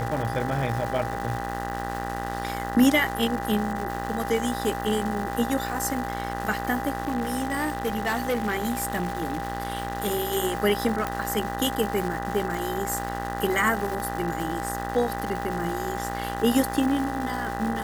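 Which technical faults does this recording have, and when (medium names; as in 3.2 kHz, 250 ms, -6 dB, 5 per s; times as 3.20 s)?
buzz 60 Hz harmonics 33 -33 dBFS
crackle 540 per s -31 dBFS
whine 800 Hz -32 dBFS
7.02–10.37 s: clipped -21 dBFS
11.07 s: pop -13 dBFS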